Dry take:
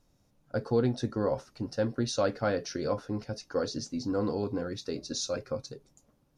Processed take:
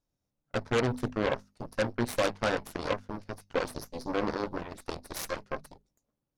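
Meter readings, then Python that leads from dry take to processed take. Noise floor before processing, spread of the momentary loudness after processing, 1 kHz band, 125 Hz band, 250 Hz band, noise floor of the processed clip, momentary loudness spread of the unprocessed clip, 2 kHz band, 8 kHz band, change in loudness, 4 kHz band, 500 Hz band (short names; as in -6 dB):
-69 dBFS, 11 LU, +3.5 dB, -2.5 dB, -3.0 dB, -85 dBFS, 9 LU, +7.0 dB, -4.0 dB, -1.0 dB, -1.0 dB, -1.5 dB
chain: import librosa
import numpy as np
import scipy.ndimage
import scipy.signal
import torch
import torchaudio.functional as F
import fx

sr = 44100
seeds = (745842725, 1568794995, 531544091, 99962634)

y = fx.cheby_harmonics(x, sr, harmonics=(5, 6, 7, 8), levels_db=(-12, -17, -9, -11), full_scale_db=-16.0)
y = fx.hum_notches(y, sr, base_hz=50, count=5)
y = y * librosa.db_to_amplitude(-2.5)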